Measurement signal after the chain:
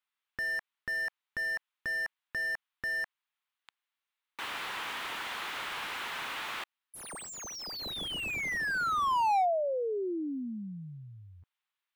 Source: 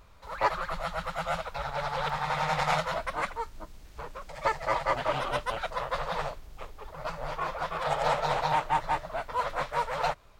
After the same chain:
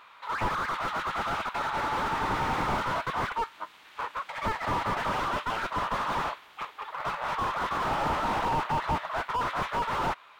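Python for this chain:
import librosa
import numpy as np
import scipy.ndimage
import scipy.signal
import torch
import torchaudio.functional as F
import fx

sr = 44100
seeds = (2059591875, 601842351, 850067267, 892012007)

y = scipy.signal.sosfilt(scipy.signal.butter(2, 300.0, 'highpass', fs=sr, output='sos'), x)
y = fx.band_shelf(y, sr, hz=1800.0, db=14.0, octaves=2.5)
y = fx.slew_limit(y, sr, full_power_hz=66.0)
y = F.gain(torch.from_numpy(y), -3.0).numpy()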